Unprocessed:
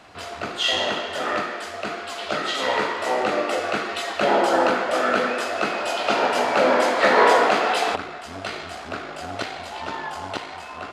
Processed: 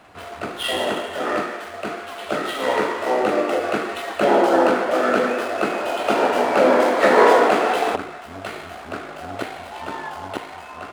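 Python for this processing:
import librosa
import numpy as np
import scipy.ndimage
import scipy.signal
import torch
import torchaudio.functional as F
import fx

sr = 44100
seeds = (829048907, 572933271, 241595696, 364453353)

y = scipy.ndimage.median_filter(x, 9, mode='constant')
y = fx.dynamic_eq(y, sr, hz=340.0, q=0.83, threshold_db=-34.0, ratio=4.0, max_db=6)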